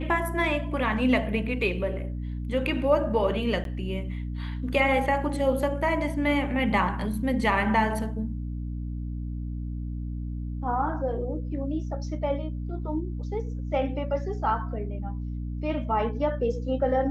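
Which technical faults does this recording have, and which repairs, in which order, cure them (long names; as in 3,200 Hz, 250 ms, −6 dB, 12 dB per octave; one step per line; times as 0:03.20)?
mains hum 60 Hz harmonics 5 −32 dBFS
0:03.64–0:03.65: drop-out 12 ms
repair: hum removal 60 Hz, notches 5
repair the gap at 0:03.64, 12 ms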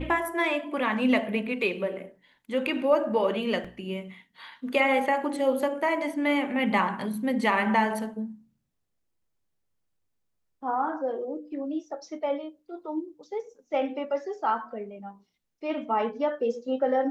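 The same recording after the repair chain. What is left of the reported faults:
none of them is left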